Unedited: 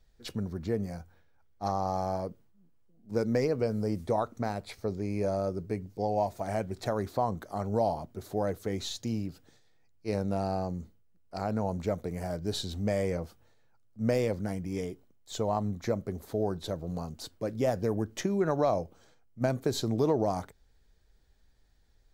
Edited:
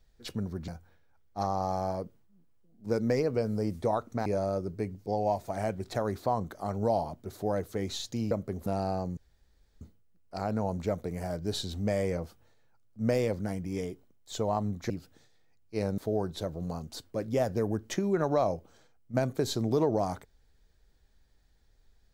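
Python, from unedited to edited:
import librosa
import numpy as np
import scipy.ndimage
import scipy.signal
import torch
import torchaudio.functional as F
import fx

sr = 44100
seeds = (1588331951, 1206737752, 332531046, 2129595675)

y = fx.edit(x, sr, fx.cut(start_s=0.68, length_s=0.25),
    fx.cut(start_s=4.51, length_s=0.66),
    fx.swap(start_s=9.22, length_s=1.08, other_s=15.9, other_length_s=0.35),
    fx.insert_room_tone(at_s=10.81, length_s=0.64), tone=tone)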